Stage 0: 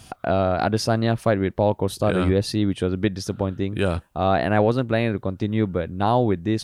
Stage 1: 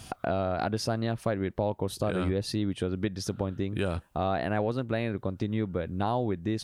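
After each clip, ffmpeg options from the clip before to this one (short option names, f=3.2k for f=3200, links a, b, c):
-af "acompressor=threshold=-29dB:ratio=2.5"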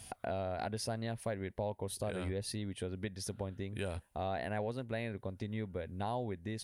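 -af "equalizer=f=160:t=o:w=0.33:g=-9,equalizer=f=315:t=o:w=0.33:g=-8,equalizer=f=1.25k:t=o:w=0.33:g=-8,equalizer=f=2k:t=o:w=0.33:g=4,equalizer=f=10k:t=o:w=0.33:g=11,volume=-7.5dB"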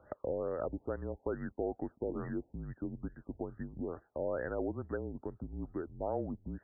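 -af "highpass=f=230:t=q:w=0.5412,highpass=f=230:t=q:w=1.307,lowpass=f=3.1k:t=q:w=0.5176,lowpass=f=3.1k:t=q:w=0.7071,lowpass=f=3.1k:t=q:w=1.932,afreqshift=-150,afftfilt=real='re*lt(b*sr/1024,900*pow(2000/900,0.5+0.5*sin(2*PI*2.3*pts/sr)))':imag='im*lt(b*sr/1024,900*pow(2000/900,0.5+0.5*sin(2*PI*2.3*pts/sr)))':win_size=1024:overlap=0.75,volume=2.5dB"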